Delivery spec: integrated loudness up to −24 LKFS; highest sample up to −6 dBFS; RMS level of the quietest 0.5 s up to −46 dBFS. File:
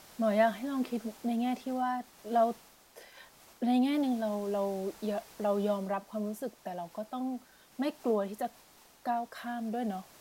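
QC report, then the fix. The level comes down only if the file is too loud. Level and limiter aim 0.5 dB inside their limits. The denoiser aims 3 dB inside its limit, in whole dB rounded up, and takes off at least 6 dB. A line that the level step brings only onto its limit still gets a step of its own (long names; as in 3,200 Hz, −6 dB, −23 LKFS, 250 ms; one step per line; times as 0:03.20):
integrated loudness −33.0 LKFS: in spec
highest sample −15.0 dBFS: in spec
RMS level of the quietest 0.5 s −59 dBFS: in spec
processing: no processing needed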